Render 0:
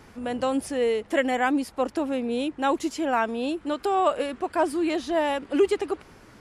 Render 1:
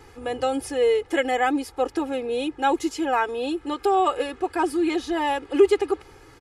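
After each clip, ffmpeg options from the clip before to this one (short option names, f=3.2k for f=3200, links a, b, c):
-af "aecho=1:1:2.4:0.94,volume=-1dB"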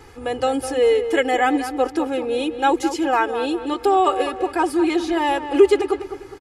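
-filter_complex "[0:a]asplit=2[a][b];[b]adelay=204,lowpass=f=2.6k:p=1,volume=-10dB,asplit=2[c][d];[d]adelay=204,lowpass=f=2.6k:p=1,volume=0.4,asplit=2[e][f];[f]adelay=204,lowpass=f=2.6k:p=1,volume=0.4,asplit=2[g][h];[h]adelay=204,lowpass=f=2.6k:p=1,volume=0.4[i];[a][c][e][g][i]amix=inputs=5:normalize=0,volume=3.5dB"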